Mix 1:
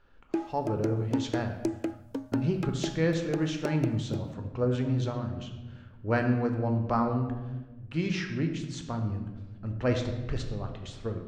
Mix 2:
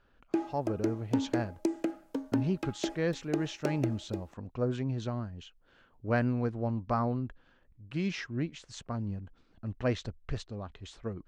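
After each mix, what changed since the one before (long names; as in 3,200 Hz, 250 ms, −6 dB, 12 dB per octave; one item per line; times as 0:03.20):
reverb: off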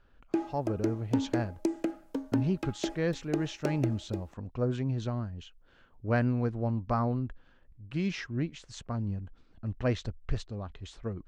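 master: add low-shelf EQ 89 Hz +7.5 dB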